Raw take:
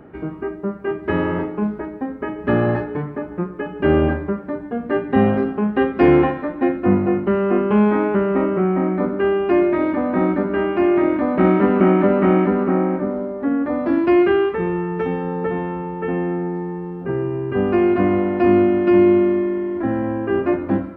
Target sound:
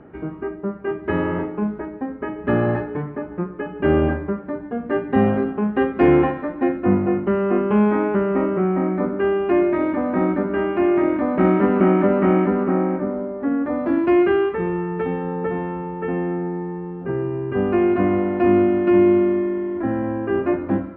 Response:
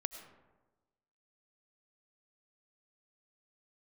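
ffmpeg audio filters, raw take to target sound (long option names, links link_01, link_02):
-af "lowpass=3200,volume=-1.5dB"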